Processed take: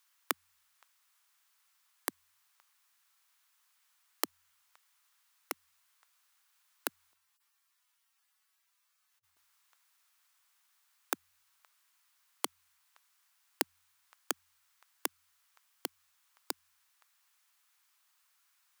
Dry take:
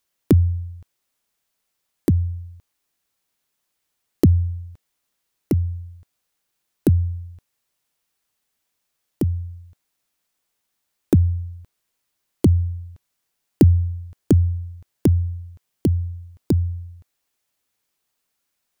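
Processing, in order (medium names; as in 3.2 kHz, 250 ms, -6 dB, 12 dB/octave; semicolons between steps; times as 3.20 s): 7.13–9.37 s: harmonic-percussive separation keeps harmonic; ladder high-pass 900 Hz, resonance 35%; trim +10.5 dB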